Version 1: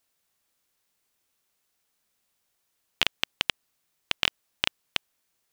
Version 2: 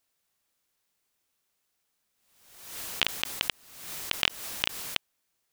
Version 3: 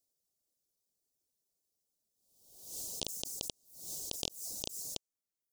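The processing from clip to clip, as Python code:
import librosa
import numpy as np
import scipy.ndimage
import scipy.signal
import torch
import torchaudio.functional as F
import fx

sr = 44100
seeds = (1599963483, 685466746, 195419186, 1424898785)

y1 = fx.pre_swell(x, sr, db_per_s=62.0)
y1 = y1 * librosa.db_to_amplitude(-2.0)
y2 = fx.dynamic_eq(y1, sr, hz=7000.0, q=1.3, threshold_db=-51.0, ratio=4.0, max_db=6)
y2 = scipy.signal.sosfilt(scipy.signal.cheby1(2, 1.0, [550.0, 5300.0], 'bandstop', fs=sr, output='sos'), y2)
y2 = fx.dereverb_blind(y2, sr, rt60_s=0.73)
y2 = y2 * librosa.db_to_amplitude(-3.5)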